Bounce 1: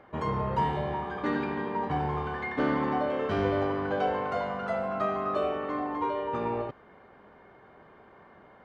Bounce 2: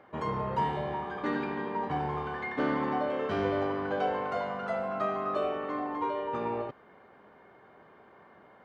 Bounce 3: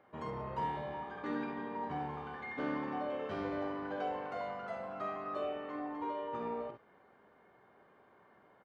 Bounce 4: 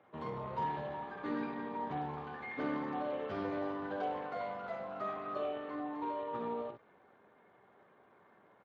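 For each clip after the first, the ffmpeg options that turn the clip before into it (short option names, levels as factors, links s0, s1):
-af "highpass=f=130:p=1,volume=0.841"
-af "aecho=1:1:47|64:0.376|0.376,volume=0.355"
-ar 32000 -c:a libspeex -b:a 24k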